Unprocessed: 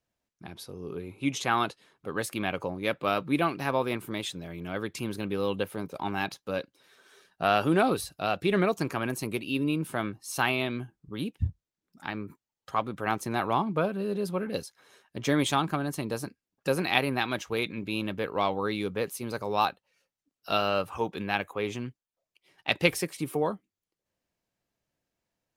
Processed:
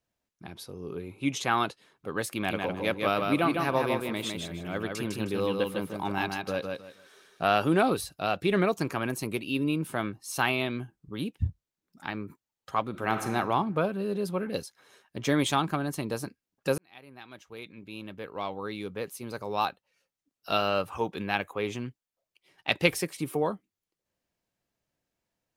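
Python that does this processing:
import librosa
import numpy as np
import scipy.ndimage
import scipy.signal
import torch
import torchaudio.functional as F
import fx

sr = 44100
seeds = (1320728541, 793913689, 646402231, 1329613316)

y = fx.echo_feedback(x, sr, ms=155, feedback_pct=23, wet_db=-4, at=(2.29, 7.43))
y = fx.reverb_throw(y, sr, start_s=12.89, length_s=0.43, rt60_s=1.4, drr_db=5.5)
y = fx.edit(y, sr, fx.fade_in_span(start_s=16.78, length_s=3.77), tone=tone)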